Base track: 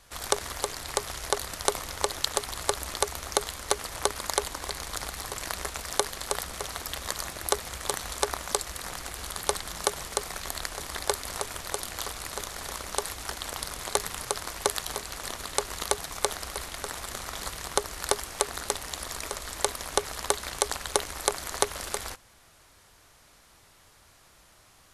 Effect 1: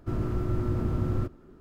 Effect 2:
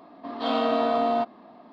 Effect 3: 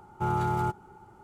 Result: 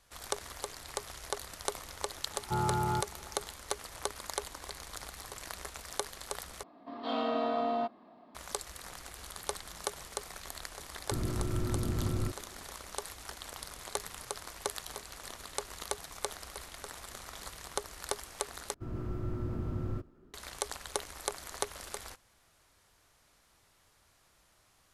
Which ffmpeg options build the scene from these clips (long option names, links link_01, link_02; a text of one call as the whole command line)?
ffmpeg -i bed.wav -i cue0.wav -i cue1.wav -i cue2.wav -filter_complex "[1:a]asplit=2[link_01][link_02];[0:a]volume=-9.5dB[link_03];[link_02]dynaudnorm=framelen=130:gausssize=3:maxgain=3.5dB[link_04];[link_03]asplit=3[link_05][link_06][link_07];[link_05]atrim=end=6.634[link_08];[2:a]atrim=end=1.72,asetpts=PTS-STARTPTS,volume=-8dB[link_09];[link_06]atrim=start=8.346:end=18.744[link_10];[link_04]atrim=end=1.6,asetpts=PTS-STARTPTS,volume=-11.5dB[link_11];[link_07]atrim=start=20.336[link_12];[3:a]atrim=end=1.23,asetpts=PTS-STARTPTS,volume=-3.5dB,afade=type=in:duration=0.004:curve=hsin,afade=type=out:start_time=1.226:duration=0.004:curve=hsin,adelay=2300[link_13];[link_01]atrim=end=1.6,asetpts=PTS-STARTPTS,volume=-5dB,afade=type=in:duration=0.004:curve=hsin,afade=type=out:start_time=1.596:duration=0.004:curve=hsin,adelay=11040[link_14];[link_08][link_09]acrossfade=duration=0.004:curve1=hsin:curve2=hsin[link_15];[link_15][link_10]acrossfade=duration=0.004:curve1=hsin:curve2=hsin[link_16];[link_16][link_11]acrossfade=duration=0.004:curve1=hsin:curve2=hsin[link_17];[link_17][link_12]acrossfade=duration=0.004:curve1=hsin:curve2=hsin[link_18];[link_18][link_13][link_14]amix=inputs=3:normalize=0" out.wav